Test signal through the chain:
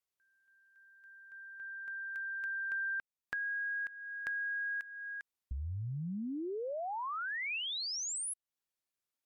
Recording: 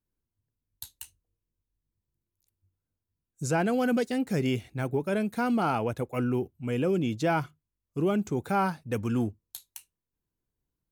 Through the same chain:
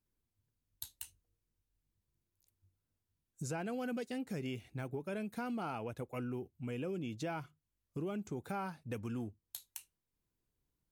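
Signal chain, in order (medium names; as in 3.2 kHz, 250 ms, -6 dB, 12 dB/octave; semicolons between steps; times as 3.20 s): dynamic bell 2.6 kHz, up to +4 dB, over -50 dBFS, Q 4.9; compression 3:1, threshold -41 dBFS; MP3 80 kbps 44.1 kHz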